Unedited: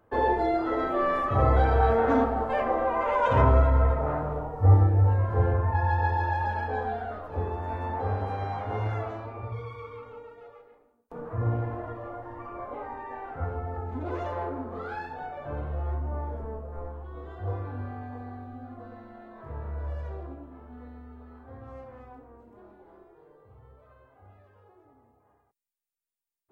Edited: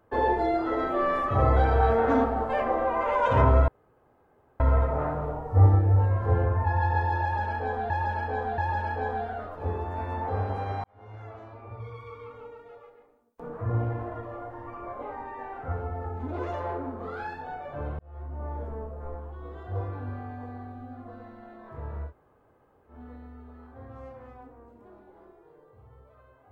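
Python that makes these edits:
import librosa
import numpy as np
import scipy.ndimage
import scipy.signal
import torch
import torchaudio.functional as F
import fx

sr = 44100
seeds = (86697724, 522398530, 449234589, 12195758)

y = fx.edit(x, sr, fx.insert_room_tone(at_s=3.68, length_s=0.92),
    fx.repeat(start_s=6.3, length_s=0.68, count=3),
    fx.fade_in_span(start_s=8.56, length_s=1.58),
    fx.fade_in_span(start_s=15.71, length_s=0.62),
    fx.room_tone_fill(start_s=19.8, length_s=0.83, crossfade_s=0.1), tone=tone)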